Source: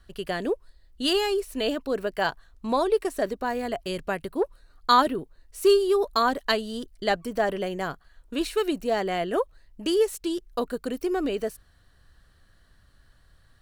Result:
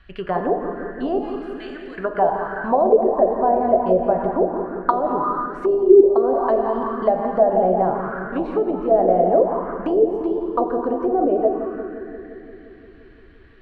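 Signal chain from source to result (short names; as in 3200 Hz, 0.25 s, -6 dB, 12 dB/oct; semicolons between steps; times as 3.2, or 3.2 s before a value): 1.18–1.98 differentiator; compressor 16:1, threshold -24 dBFS, peak gain reduction 11 dB; darkening echo 0.173 s, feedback 78%, low-pass 1200 Hz, level -7.5 dB; plate-style reverb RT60 2.3 s, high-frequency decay 0.6×, DRR 3.5 dB; envelope low-pass 270–2600 Hz down, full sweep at -18 dBFS; gain +4 dB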